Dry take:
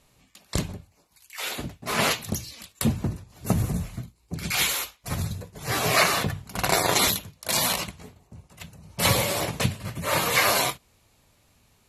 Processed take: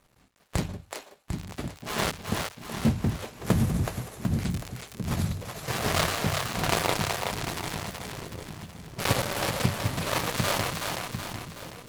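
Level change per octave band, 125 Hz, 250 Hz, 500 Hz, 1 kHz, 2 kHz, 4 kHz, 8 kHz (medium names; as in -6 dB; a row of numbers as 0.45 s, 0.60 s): +0.5 dB, +0.5 dB, -2.5 dB, -3.5 dB, -5.0 dB, -5.5 dB, -7.0 dB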